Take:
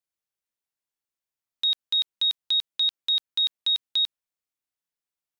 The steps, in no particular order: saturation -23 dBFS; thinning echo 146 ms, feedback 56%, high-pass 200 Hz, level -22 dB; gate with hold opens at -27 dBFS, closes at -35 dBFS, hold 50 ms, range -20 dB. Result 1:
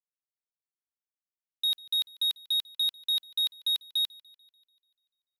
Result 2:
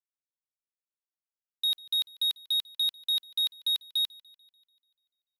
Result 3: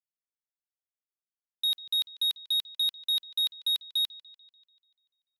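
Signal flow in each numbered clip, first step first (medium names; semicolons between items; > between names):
gate with hold > saturation > thinning echo; saturation > gate with hold > thinning echo; gate with hold > thinning echo > saturation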